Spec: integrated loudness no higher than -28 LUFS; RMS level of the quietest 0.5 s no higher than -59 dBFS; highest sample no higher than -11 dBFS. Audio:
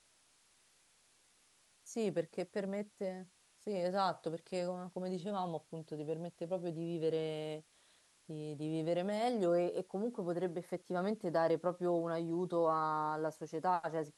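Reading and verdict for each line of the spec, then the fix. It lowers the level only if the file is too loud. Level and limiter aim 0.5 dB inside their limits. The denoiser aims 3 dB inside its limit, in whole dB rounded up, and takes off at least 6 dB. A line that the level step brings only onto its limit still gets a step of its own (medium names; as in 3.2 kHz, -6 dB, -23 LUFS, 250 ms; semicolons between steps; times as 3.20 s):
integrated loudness -37.5 LUFS: pass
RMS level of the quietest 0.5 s -70 dBFS: pass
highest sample -20.5 dBFS: pass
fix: none needed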